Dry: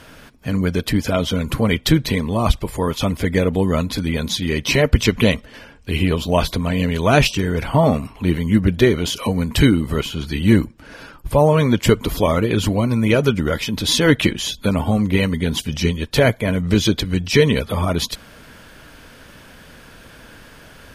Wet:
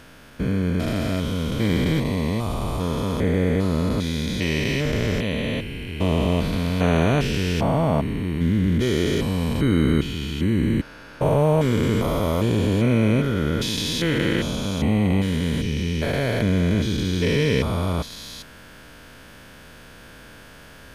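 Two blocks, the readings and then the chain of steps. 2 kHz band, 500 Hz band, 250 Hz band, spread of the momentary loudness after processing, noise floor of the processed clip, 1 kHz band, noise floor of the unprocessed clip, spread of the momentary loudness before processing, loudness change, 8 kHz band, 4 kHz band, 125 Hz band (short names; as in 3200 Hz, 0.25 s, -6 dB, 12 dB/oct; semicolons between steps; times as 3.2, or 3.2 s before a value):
-5.5 dB, -5.0 dB, -3.0 dB, 6 LU, -45 dBFS, -5.0 dB, -44 dBFS, 7 LU, -4.0 dB, -7.5 dB, -6.0 dB, -2.5 dB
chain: stepped spectrum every 0.4 s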